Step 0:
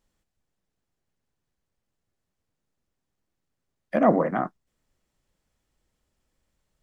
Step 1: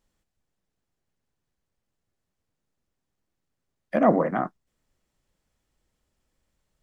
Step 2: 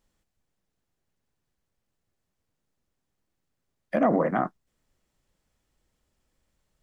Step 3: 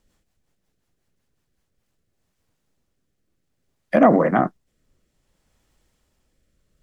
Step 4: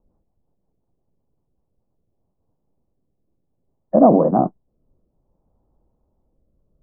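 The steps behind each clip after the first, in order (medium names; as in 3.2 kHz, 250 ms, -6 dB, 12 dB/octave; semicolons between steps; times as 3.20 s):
no audible change
peak limiter -13.5 dBFS, peak gain reduction 8 dB; trim +1 dB
rotary cabinet horn 5.5 Hz, later 0.6 Hz, at 1.40 s; trim +9 dB
steep low-pass 960 Hz 36 dB/octave; trim +2.5 dB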